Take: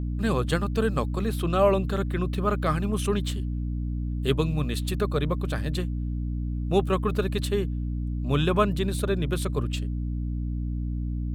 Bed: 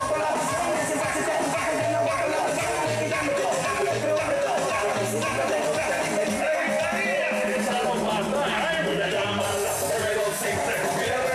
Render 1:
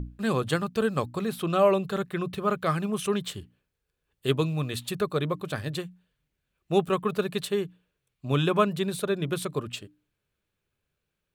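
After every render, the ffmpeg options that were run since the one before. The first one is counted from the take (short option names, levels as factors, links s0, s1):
-af "bandreject=f=60:t=h:w=6,bandreject=f=120:t=h:w=6,bandreject=f=180:t=h:w=6,bandreject=f=240:t=h:w=6,bandreject=f=300:t=h:w=6"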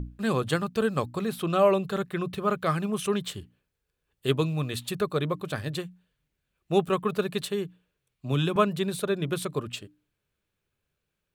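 -filter_complex "[0:a]asettb=1/sr,asplit=3[s0][s1][s2];[s0]atrim=end=7.414[s3];[s1]atrim=start=7.41:end=8.56,asetpts=PTS-STARTPTS,afade=t=in:d=0.004:c=qsin,afade=t=out:st=1.146:d=0.004:c=qsin,acrossover=split=320|3000[s4][s5][s6];[s5]acompressor=threshold=0.0316:ratio=6:attack=3.2:release=140:knee=2.83:detection=peak[s7];[s4][s7][s6]amix=inputs=3:normalize=0[s8];[s2]atrim=start=8.556[s9];[s3][s8]acrossfade=d=0.004:c1=hsin:c2=qsin[s10];[s10][s9]acrossfade=d=0.004:c1=qsin:c2=hsin"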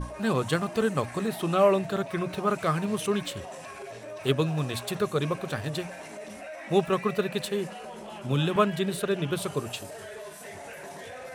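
-filter_complex "[1:a]volume=0.15[s0];[0:a][s0]amix=inputs=2:normalize=0"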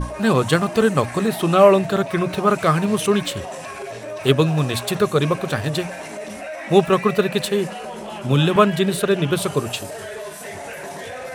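-af "volume=2.82,alimiter=limit=0.891:level=0:latency=1"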